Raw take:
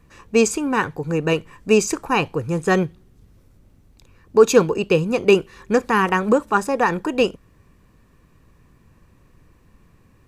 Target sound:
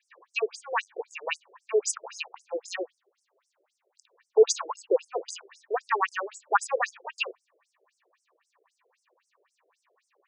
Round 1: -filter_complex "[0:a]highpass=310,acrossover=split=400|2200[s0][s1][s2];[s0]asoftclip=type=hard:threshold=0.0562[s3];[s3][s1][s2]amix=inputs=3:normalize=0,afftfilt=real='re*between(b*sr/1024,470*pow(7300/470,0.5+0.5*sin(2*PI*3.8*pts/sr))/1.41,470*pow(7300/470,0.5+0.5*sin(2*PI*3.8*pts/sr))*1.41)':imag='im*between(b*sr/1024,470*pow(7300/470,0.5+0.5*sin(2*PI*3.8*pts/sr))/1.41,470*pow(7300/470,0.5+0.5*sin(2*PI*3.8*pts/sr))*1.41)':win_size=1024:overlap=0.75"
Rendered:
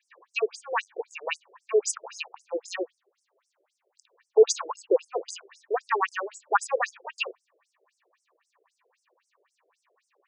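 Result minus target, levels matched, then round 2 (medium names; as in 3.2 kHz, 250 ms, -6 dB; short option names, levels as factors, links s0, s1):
hard clipper: distortion -5 dB
-filter_complex "[0:a]highpass=310,acrossover=split=400|2200[s0][s1][s2];[s0]asoftclip=type=hard:threshold=0.0168[s3];[s3][s1][s2]amix=inputs=3:normalize=0,afftfilt=real='re*between(b*sr/1024,470*pow(7300/470,0.5+0.5*sin(2*PI*3.8*pts/sr))/1.41,470*pow(7300/470,0.5+0.5*sin(2*PI*3.8*pts/sr))*1.41)':imag='im*between(b*sr/1024,470*pow(7300/470,0.5+0.5*sin(2*PI*3.8*pts/sr))/1.41,470*pow(7300/470,0.5+0.5*sin(2*PI*3.8*pts/sr))*1.41)':win_size=1024:overlap=0.75"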